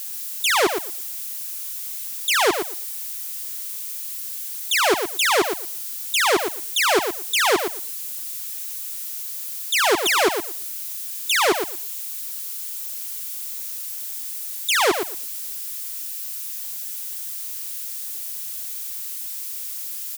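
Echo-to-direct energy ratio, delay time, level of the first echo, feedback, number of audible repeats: -7.5 dB, 116 ms, -7.5 dB, 16%, 2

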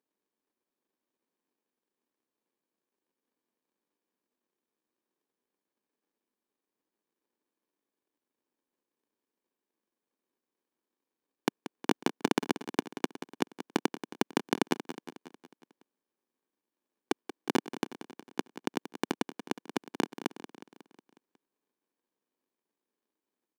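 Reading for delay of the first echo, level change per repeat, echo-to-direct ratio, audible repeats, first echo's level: 182 ms, -5.0 dB, -11.0 dB, 5, -12.5 dB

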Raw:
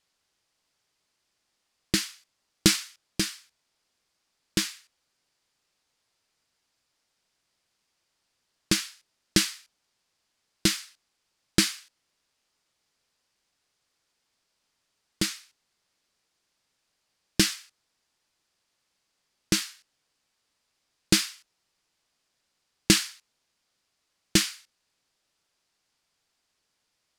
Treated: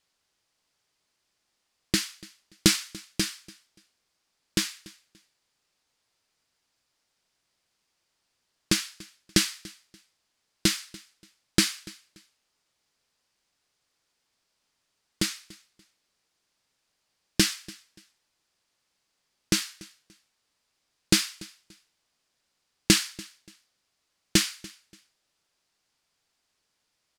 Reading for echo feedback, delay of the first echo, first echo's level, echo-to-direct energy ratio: 26%, 289 ms, -22.0 dB, -21.5 dB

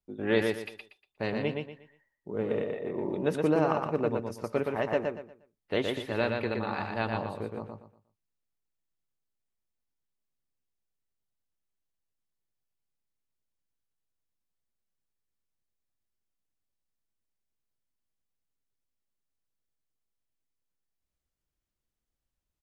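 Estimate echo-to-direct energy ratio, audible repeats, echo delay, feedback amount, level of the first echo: -3.5 dB, 3, 119 ms, 29%, -4.0 dB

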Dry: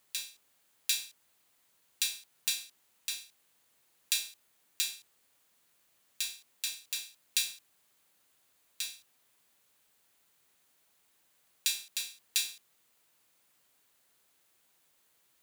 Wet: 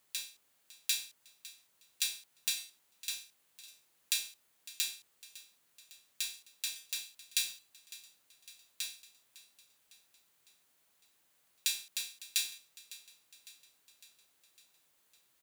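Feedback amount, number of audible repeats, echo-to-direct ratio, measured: 58%, 4, -16.0 dB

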